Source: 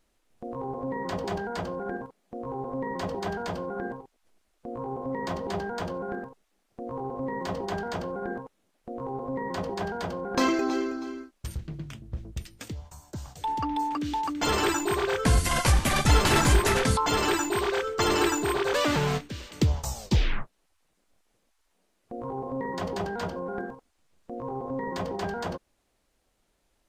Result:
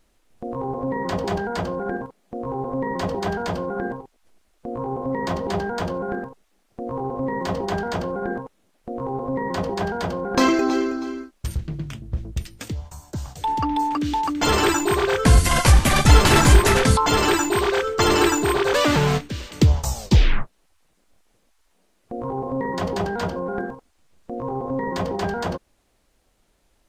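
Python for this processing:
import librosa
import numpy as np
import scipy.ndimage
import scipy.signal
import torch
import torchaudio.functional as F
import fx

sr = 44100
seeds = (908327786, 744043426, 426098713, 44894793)

y = fx.low_shelf(x, sr, hz=160.0, db=3.0)
y = y * librosa.db_to_amplitude(6.0)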